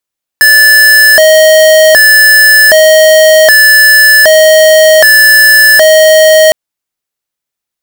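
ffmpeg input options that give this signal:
ffmpeg -f lavfi -i "aevalsrc='0.708*(2*lt(mod((1184*t+556/0.65*(0.5-abs(mod(0.65*t,1)-0.5))),1),0.5)-1)':duration=6.11:sample_rate=44100" out.wav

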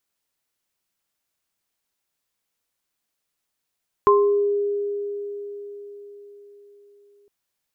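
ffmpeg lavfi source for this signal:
ffmpeg -f lavfi -i "aevalsrc='0.224*pow(10,-3*t/4.68)*sin(2*PI*407*t)+0.282*pow(10,-3*t/0.49)*sin(2*PI*1050*t)':duration=3.21:sample_rate=44100" out.wav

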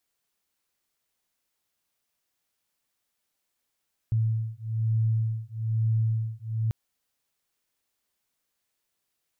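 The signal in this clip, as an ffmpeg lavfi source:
ffmpeg -f lavfi -i "aevalsrc='0.0473*(sin(2*PI*111*t)+sin(2*PI*112.1*t))':duration=2.59:sample_rate=44100" out.wav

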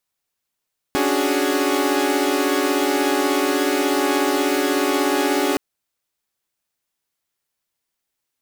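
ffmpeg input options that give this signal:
ffmpeg -f lavfi -i "aevalsrc='0.0944*((2*mod(277.18*t,1)-1)+(2*mod(293.66*t,1)-1)+(2*mod(369.99*t,1)-1)+(2*mod(415.3*t,1)-1))':duration=4.62:sample_rate=44100" out.wav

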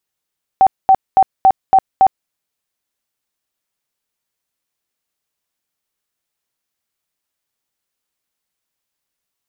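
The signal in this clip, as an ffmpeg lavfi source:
ffmpeg -f lavfi -i "aevalsrc='0.562*sin(2*PI*768*mod(t,0.28))*lt(mod(t,0.28),44/768)':duration=1.68:sample_rate=44100" out.wav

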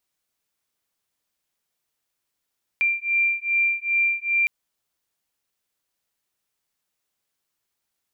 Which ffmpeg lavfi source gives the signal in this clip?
ffmpeg -f lavfi -i "aevalsrc='0.075*(sin(2*PI*2370*t)+sin(2*PI*2372.5*t))':duration=1.66:sample_rate=44100" out.wav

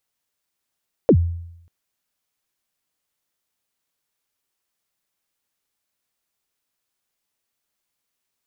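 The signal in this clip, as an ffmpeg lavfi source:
ffmpeg -f lavfi -i "aevalsrc='0.447*pow(10,-3*t/0.79)*sin(2*PI*(570*0.071/log(85/570)*(exp(log(85/570)*min(t,0.071)/0.071)-1)+85*max(t-0.071,0)))':duration=0.59:sample_rate=44100" out.wav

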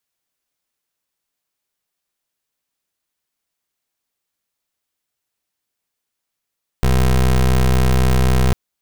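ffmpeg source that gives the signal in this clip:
ffmpeg -f lavfi -i "aevalsrc='0.211*(2*lt(mod(63.9*t,1),0.22)-1)':duration=1.7:sample_rate=44100" out.wav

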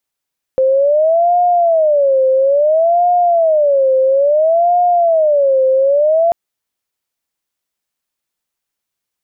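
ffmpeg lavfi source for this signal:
ffmpeg -f lavfi -i "aevalsrc='0.376*sin(2*PI*(617.5*t-93.5/(2*PI*0.59)*sin(2*PI*0.59*t)))':duration=5.74:sample_rate=44100" out.wav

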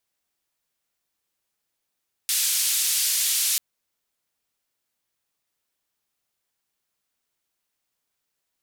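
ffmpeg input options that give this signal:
ffmpeg -f lavfi -i "anoisesrc=color=white:duration=1.29:sample_rate=44100:seed=1,highpass=frequency=3300,lowpass=frequency=13000,volume=-14.5dB" out.wav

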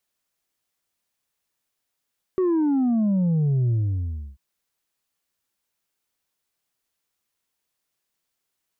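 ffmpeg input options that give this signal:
ffmpeg -f lavfi -i "aevalsrc='0.119*clip((1.99-t)/0.67,0,1)*tanh(1.41*sin(2*PI*380*1.99/log(65/380)*(exp(log(65/380)*t/1.99)-1)))/tanh(1.41)':duration=1.99:sample_rate=44100" out.wav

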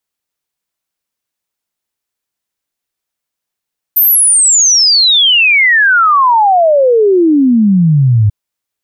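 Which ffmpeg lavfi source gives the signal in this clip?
ffmpeg -f lavfi -i "aevalsrc='0.562*clip(min(t,4.34-t)/0.01,0,1)*sin(2*PI*14000*4.34/log(100/14000)*(exp(log(100/14000)*t/4.34)-1))':duration=4.34:sample_rate=44100" out.wav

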